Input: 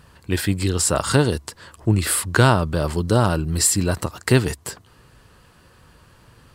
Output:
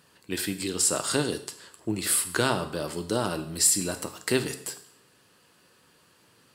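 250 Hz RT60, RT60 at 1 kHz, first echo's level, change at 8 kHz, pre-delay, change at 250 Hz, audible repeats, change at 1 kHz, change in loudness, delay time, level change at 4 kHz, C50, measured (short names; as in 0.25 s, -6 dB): 0.65 s, 0.65 s, none, -2.0 dB, 7 ms, -8.5 dB, none, -9.0 dB, -6.5 dB, none, -3.5 dB, 12.0 dB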